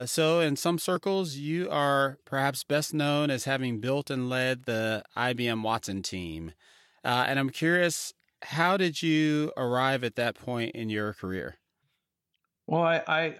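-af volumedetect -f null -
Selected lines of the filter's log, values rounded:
mean_volume: -28.7 dB
max_volume: -10.0 dB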